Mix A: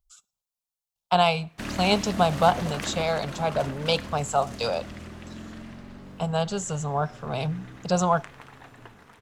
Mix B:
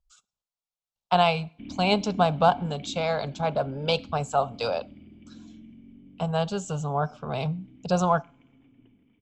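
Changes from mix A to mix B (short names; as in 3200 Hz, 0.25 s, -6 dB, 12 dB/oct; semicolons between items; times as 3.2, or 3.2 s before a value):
background: add vocal tract filter i; master: add air absorption 80 m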